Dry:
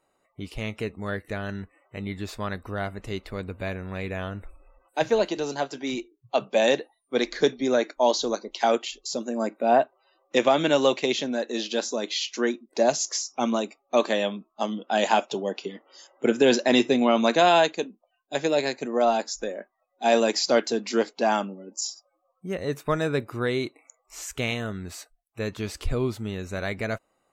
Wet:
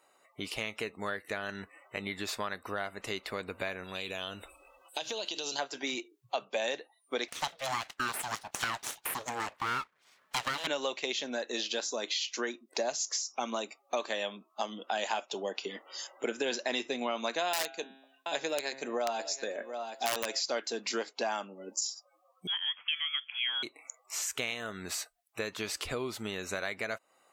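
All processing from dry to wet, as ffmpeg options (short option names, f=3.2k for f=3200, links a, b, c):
-filter_complex "[0:a]asettb=1/sr,asplit=3[a][b][c];[a]atrim=end=3.844[d];[b]atrim=start=3.84:end=5.59,asetpts=PTS-STARTPTS,afade=t=in:d=0.004:c=qsin,afade=t=out:st=1.746:d=0.004:c=qsin,highshelf=f=2.5k:t=q:w=3:g=6.5,acompressor=threshold=-34dB:ratio=6:attack=3.2:release=140:knee=1:detection=peak[e];[c]atrim=start=5.586[f];[d][e]acrossfade=d=0.004:c1=hsin:c2=qsin[g];[g][f]acrossfade=d=0.004:c1=qsin:c2=hsin,asettb=1/sr,asplit=3[h][i][j];[h]atrim=end=7.284[k];[i]atrim=start=7.28:end=10.67,asetpts=PTS-STARTPTS,afade=t=in:d=0.004:c=qsin,afade=t=out:st=3.386:d=0.004:c=qsin,highpass=f=260:p=1,aeval=exprs='abs(val(0))':c=same[l];[j]atrim=start=10.666[m];[k][l]acrossfade=d=0.004:c1=hsin:c2=qsin[n];[n][m]acrossfade=d=0.004:c1=qsin:c2=hsin,asettb=1/sr,asplit=3[o][p][q];[o]atrim=end=17.534[r];[p]atrim=start=17.53:end=20.4,asetpts=PTS-STARTPTS,afade=t=in:d=0.004:c=qsin,afade=t=out:st=2.866:d=0.004:c=qsin,bandreject=f=134.2:t=h:w=4,bandreject=f=268.4:t=h:w=4,bandreject=f=402.6:t=h:w=4,bandreject=f=536.8:t=h:w=4,bandreject=f=671:t=h:w=4,bandreject=f=805.2:t=h:w=4,bandreject=f=939.4:t=h:w=4,bandreject=f=1.0736k:t=h:w=4,bandreject=f=1.2078k:t=h:w=4,bandreject=f=1.342k:t=h:w=4,bandreject=f=1.4762k:t=h:w=4,bandreject=f=1.6104k:t=h:w=4,bandreject=f=1.7446k:t=h:w=4,bandreject=f=1.8788k:t=h:w=4,bandreject=f=2.013k:t=h:w=4,bandreject=f=2.1472k:t=h:w=4,bandreject=f=2.2814k:t=h:w=4,bandreject=f=2.4156k:t=h:w=4,bandreject=f=2.5498k:t=h:w=4,bandreject=f=2.684k:t=h:w=4,bandreject=f=2.8182k:t=h:w=4,bandreject=f=2.9524k:t=h:w=4,bandreject=f=3.0866k:t=h:w=4,bandreject=f=3.2208k:t=h:w=4,bandreject=f=3.355k:t=h:w=4,bandreject=f=3.4892k:t=h:w=4,bandreject=f=3.6234k:t=h:w=4,bandreject=f=3.7576k:t=h:w=4,bandreject=f=3.8918k:t=h:w=4,aecho=1:1:729:0.1,atrim=end_sample=126567,aeval=exprs='(mod(3.76*val(0)+1,2)-1)/3.76':c=same[s];[q]atrim=start=20.396[t];[r][s]acrossfade=d=0.004:c1=hsin:c2=qsin[u];[u][t]acrossfade=d=0.004:c1=qsin:c2=hsin,asettb=1/sr,asplit=3[v][w][x];[v]atrim=end=22.474[y];[w]atrim=start=22.47:end=23.63,asetpts=PTS-STARTPTS,afade=t=in:d=0.004:c=qsin,afade=t=out:st=1.156:d=0.004:c=qsin,highpass=f=390:w=0.5412,highpass=f=390:w=1.3066,lowpass=f=3.1k:t=q:w=0.5098,lowpass=f=3.1k:t=q:w=0.6013,lowpass=f=3.1k:t=q:w=0.9,lowpass=f=3.1k:t=q:w=2.563,afreqshift=-3700[z];[x]atrim=start=23.626[aa];[y][z]acrossfade=d=0.004:c1=hsin:c2=qsin[ab];[ab][aa]acrossfade=d=0.004:c1=qsin:c2=hsin,highpass=f=880:p=1,acompressor=threshold=-41dB:ratio=4,volume=8dB"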